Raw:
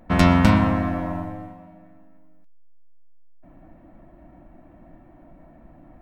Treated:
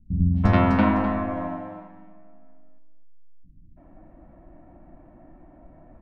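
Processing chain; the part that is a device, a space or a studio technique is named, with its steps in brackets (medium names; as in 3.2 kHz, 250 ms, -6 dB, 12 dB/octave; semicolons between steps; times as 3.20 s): phone in a pocket (low-pass 4 kHz 12 dB/octave; treble shelf 2.4 kHz -10 dB); 1.03–1.57 s: treble shelf 3.5 kHz +9.5 dB; three bands offset in time lows, highs, mids 260/340 ms, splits 190/4600 Hz; delay 254 ms -11 dB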